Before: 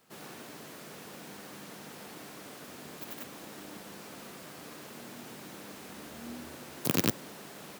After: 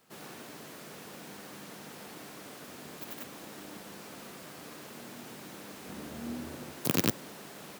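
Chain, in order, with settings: 5.86–6.72 low shelf 460 Hz +6.5 dB

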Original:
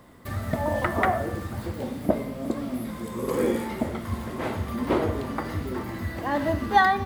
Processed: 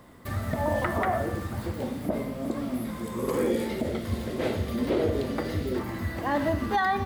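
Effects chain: 3.5–5.8 graphic EQ 500/1000/4000 Hz +7/-9/+5 dB; limiter -16.5 dBFS, peak gain reduction 9.5 dB

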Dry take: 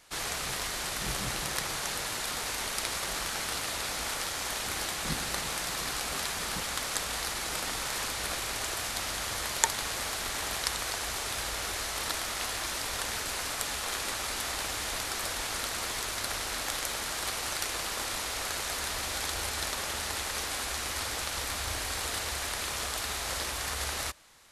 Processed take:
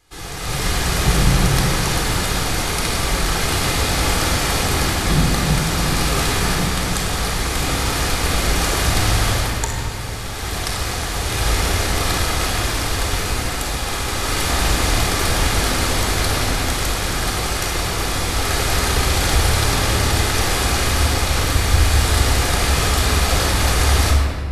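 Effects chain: low shelf 340 Hz +11 dB; AGC gain up to 14 dB; shoebox room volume 2800 m³, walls mixed, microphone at 3.9 m; gain -5.5 dB

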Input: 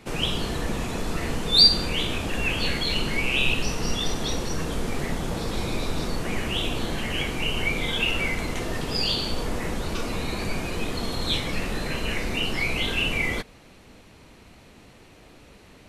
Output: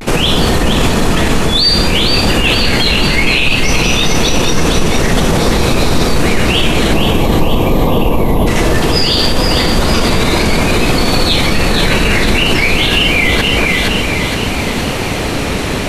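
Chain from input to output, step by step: spectral gain 6.92–8.47, 1200–11000 Hz -22 dB; reverse; compressor 6:1, threshold -38 dBFS, peak gain reduction 24.5 dB; reverse; vibrato 0.56 Hz 70 cents; split-band echo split 1600 Hz, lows 0.239 s, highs 0.467 s, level -5.5 dB; maximiser +33.5 dB; gain -1 dB

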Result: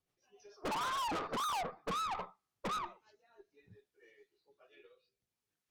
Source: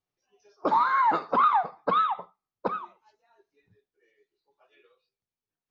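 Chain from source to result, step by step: treble ducked by the level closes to 1300 Hz, closed at -20.5 dBFS; rotary speaker horn 6.7 Hz, later 0.65 Hz, at 0.84; tube stage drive 42 dB, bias 0.5; gain +7 dB

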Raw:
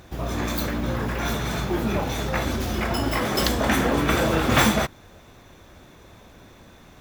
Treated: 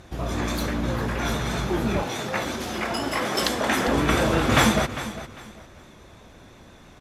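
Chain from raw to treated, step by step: 2.02–3.88 HPF 300 Hz 6 dB/oct; feedback echo 0.4 s, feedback 26%, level -13.5 dB; vibrato 6 Hz 36 cents; LPF 12000 Hz 24 dB/oct

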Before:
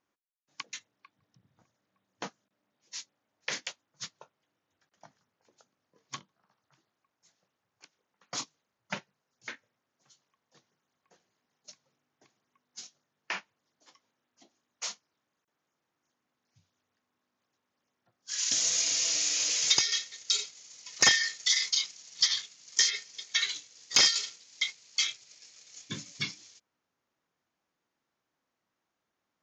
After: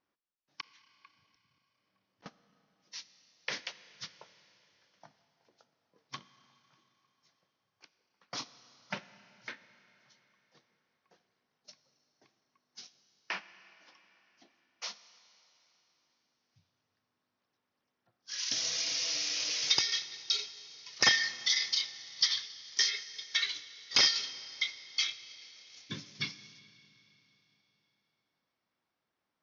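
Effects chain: 0.61–2.26 auto swell 0.288 s; steep low-pass 5900 Hz 72 dB/oct; Schroeder reverb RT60 3.6 s, combs from 26 ms, DRR 14.5 dB; gain -2 dB

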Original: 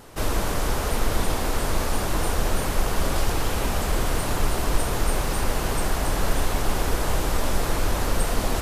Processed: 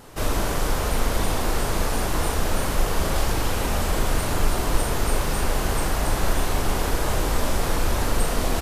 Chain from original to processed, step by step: doubler 39 ms -6 dB

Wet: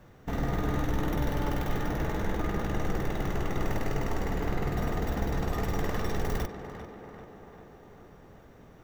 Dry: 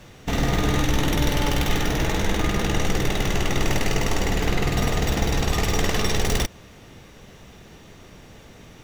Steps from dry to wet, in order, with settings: band shelf 5000 Hz -10.5 dB 2.6 oct; tape echo 0.395 s, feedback 68%, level -8 dB, low-pass 2400 Hz; gain -7.5 dB

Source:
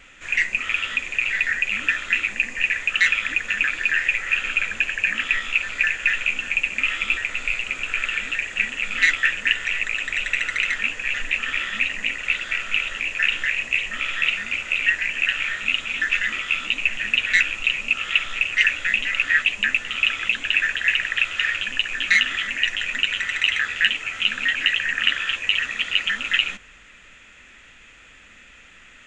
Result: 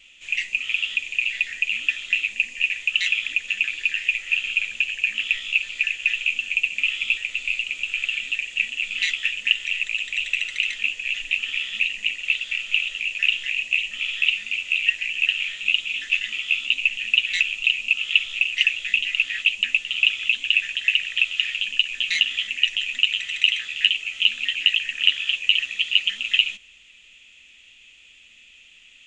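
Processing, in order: resonant high shelf 2100 Hz +10.5 dB, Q 3; gain -14 dB

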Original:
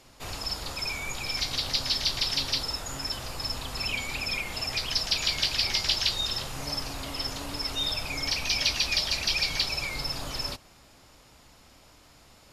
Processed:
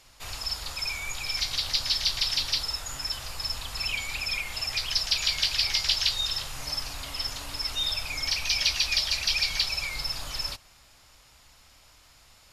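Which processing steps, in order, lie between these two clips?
bell 280 Hz -12 dB 2.8 oct; gain +1.5 dB

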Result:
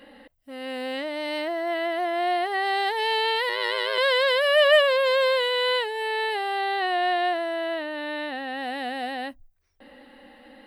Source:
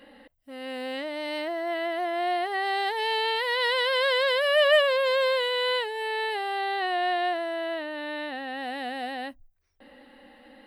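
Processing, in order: 3.49–3.98 AM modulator 110 Hz, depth 90%; gain +2.5 dB

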